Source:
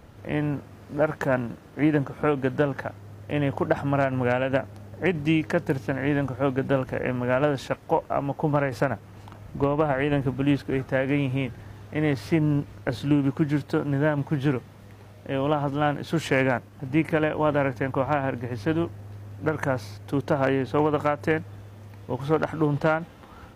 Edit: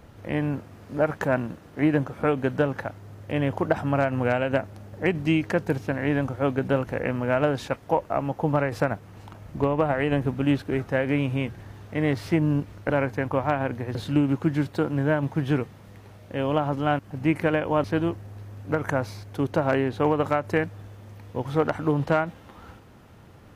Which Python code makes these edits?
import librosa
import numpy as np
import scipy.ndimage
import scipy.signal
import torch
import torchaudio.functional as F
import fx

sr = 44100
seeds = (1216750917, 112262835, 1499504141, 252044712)

y = fx.edit(x, sr, fx.cut(start_s=15.94, length_s=0.74),
    fx.move(start_s=17.53, length_s=1.05, to_s=12.9), tone=tone)